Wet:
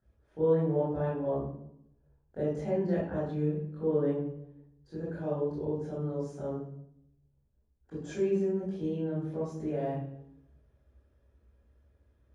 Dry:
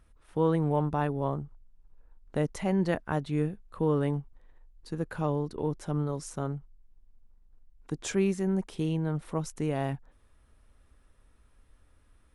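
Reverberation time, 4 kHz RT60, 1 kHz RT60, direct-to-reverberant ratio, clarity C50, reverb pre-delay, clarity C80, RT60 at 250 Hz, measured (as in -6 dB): 0.80 s, 0.65 s, 0.75 s, -11.0 dB, -0.5 dB, 20 ms, 6.0 dB, 1.0 s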